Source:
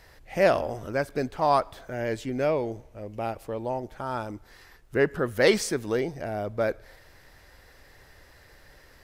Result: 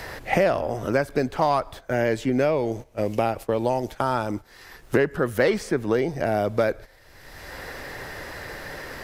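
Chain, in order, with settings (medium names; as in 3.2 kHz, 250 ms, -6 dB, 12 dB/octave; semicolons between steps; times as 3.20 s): gate -41 dBFS, range -14 dB; in parallel at -5 dB: hard clipper -16 dBFS, distortion -15 dB; on the sum: three bands compressed up and down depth 100%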